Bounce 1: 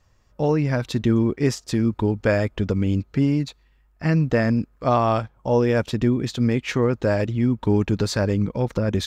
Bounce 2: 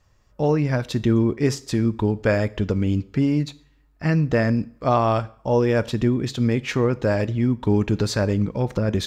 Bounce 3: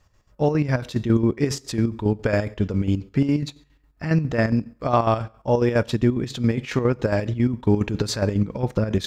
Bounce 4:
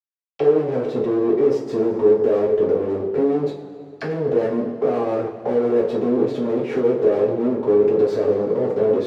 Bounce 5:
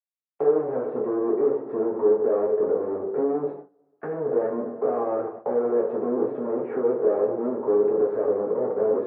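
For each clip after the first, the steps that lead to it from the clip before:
two-slope reverb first 0.48 s, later 1.7 s, from -28 dB, DRR 15 dB
chopper 7.3 Hz, depth 60%, duty 55%; gain +1.5 dB
fuzz box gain 38 dB, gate -47 dBFS; auto-wah 420–4700 Hz, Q 4.1, down, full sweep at -17.5 dBFS; two-slope reverb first 0.27 s, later 2.5 s, from -18 dB, DRR -4 dB
LPF 1400 Hz 24 dB/oct; gate with hold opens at -22 dBFS; HPF 590 Hz 6 dB/oct

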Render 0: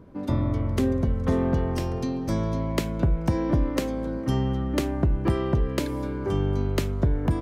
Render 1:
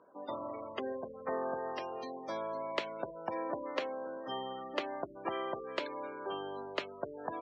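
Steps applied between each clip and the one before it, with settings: spectral gate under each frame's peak -30 dB strong; Chebyshev band-pass 640–3500 Hz, order 2; gain -2.5 dB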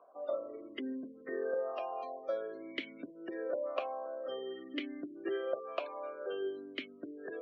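reverse; upward compressor, threshold -47 dBFS; reverse; vowel sweep a-i 0.51 Hz; gain +10 dB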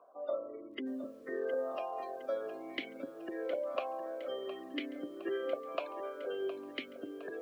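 lo-fi delay 0.713 s, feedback 55%, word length 10-bit, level -12 dB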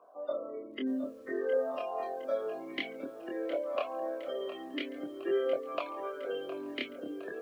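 chorus voices 2, 0.37 Hz, delay 25 ms, depth 2.5 ms; gain +6 dB

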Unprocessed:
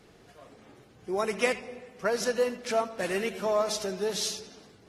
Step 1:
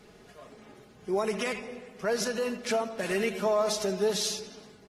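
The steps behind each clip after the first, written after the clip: limiter -22 dBFS, peak gain reduction 10.5 dB; comb 4.8 ms, depth 42%; gain +1.5 dB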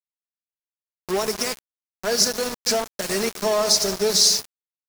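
resonant high shelf 3800 Hz +7 dB, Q 3; sample gate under -29 dBFS; gain +5 dB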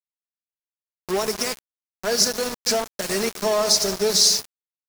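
nothing audible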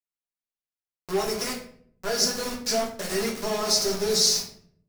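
reverb RT60 0.60 s, pre-delay 6 ms, DRR -2 dB; gain -7.5 dB

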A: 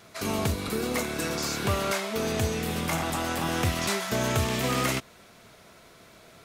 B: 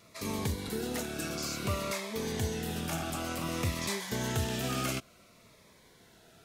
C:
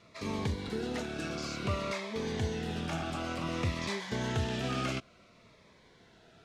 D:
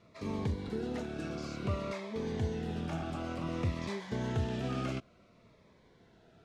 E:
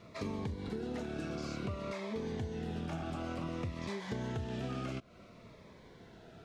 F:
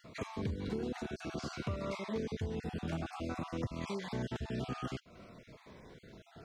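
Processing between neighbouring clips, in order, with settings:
cascading phaser falling 0.56 Hz; gain -5 dB
LPF 4500 Hz 12 dB/oct
tilt shelf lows +4.5 dB, about 1100 Hz; gain -4.5 dB
compressor 6:1, threshold -43 dBFS, peak gain reduction 15 dB; gain +7 dB
random spectral dropouts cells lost 24%; gain +2 dB

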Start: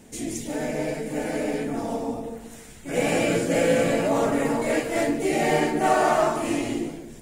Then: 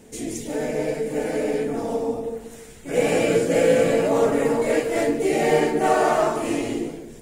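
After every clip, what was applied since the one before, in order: bell 450 Hz +8 dB 0.33 oct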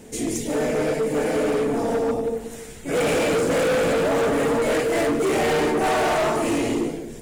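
overloaded stage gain 23 dB; gain +4.5 dB

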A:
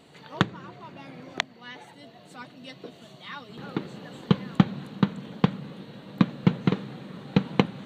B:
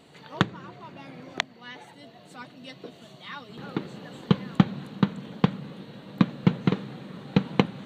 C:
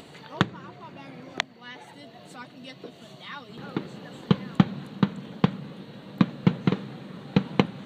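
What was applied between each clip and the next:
nothing audible
upward compressor, threshold -40 dBFS

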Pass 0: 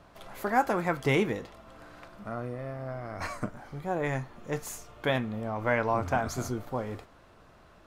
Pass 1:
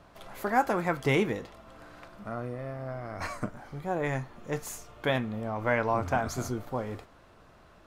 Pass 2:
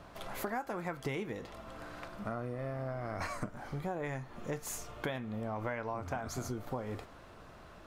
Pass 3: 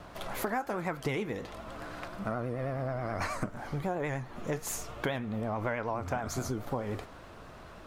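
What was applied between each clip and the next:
nothing audible
compressor 10:1, threshold -37 dBFS, peak gain reduction 18.5 dB; gain +3 dB
vibrato 9.4 Hz 74 cents; gain +4.5 dB

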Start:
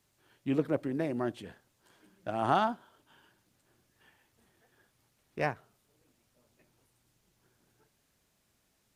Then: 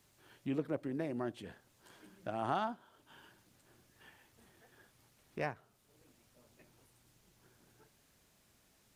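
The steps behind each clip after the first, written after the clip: compressor 1.5:1, threshold -56 dBFS, peak gain reduction 12.5 dB; gain +4 dB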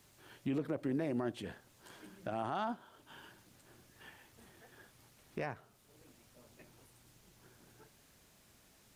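limiter -31 dBFS, peak gain reduction 10.5 dB; gain +4.5 dB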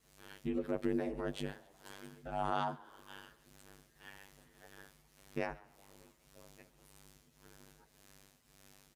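robotiser 98.3 Hz; frequency-shifting echo 0.136 s, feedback 64%, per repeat +82 Hz, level -23 dB; ring modulator 50 Hz; gain +6 dB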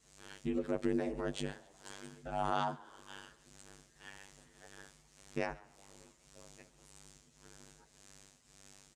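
synth low-pass 7600 Hz, resonance Q 2.3; gain +1 dB

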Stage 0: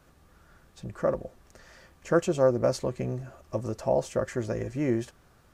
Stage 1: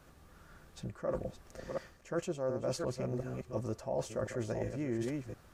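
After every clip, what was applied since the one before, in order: reverse delay 0.356 s, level -8.5 dB; reverse; compressor 5:1, threshold -33 dBFS, peak gain reduction 14.5 dB; reverse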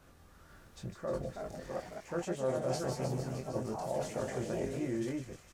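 doubler 23 ms -4 dB; thin delay 0.153 s, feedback 78%, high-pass 3100 Hz, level -6.5 dB; echoes that change speed 0.489 s, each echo +3 st, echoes 3, each echo -6 dB; gain -2 dB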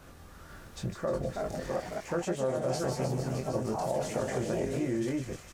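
compressor 3:1, threshold -37 dBFS, peak gain reduction 7.5 dB; gain +8.5 dB

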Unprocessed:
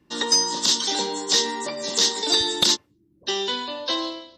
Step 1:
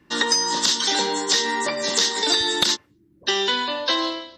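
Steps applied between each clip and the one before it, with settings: bell 1700 Hz +7.5 dB 1.2 oct; compressor, threshold -20 dBFS, peak gain reduction 7.5 dB; gain +3.5 dB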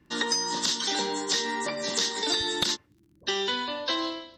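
low shelf 190 Hz +8 dB; crackle 15/s -44 dBFS; gain -7 dB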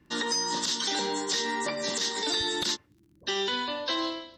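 limiter -18.5 dBFS, peak gain reduction 9.5 dB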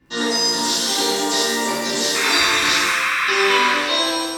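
painted sound noise, 2.14–3.75, 1000–2700 Hz -29 dBFS; shimmer reverb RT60 1.1 s, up +7 st, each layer -8 dB, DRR -8.5 dB

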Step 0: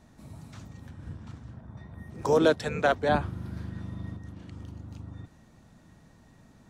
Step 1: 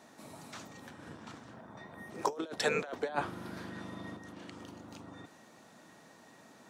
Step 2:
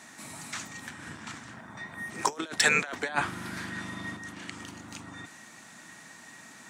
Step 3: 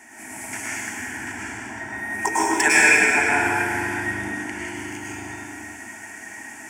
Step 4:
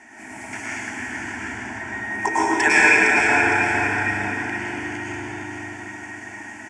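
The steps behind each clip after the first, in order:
HPF 360 Hz 12 dB/oct; negative-ratio compressor -31 dBFS, ratio -0.5; gain -1 dB
graphic EQ 500/2000/8000 Hz -9/+8/+10 dB; in parallel at -4.5 dB: hard clip -20.5 dBFS, distortion -17 dB; on the sum: gain +1.5 dB
fixed phaser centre 800 Hz, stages 8; plate-style reverb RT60 2.5 s, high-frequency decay 0.85×, pre-delay 90 ms, DRR -8 dB; gain +5 dB
air absorption 95 m; feedback echo 0.46 s, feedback 47%, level -6.5 dB; gain +1.5 dB

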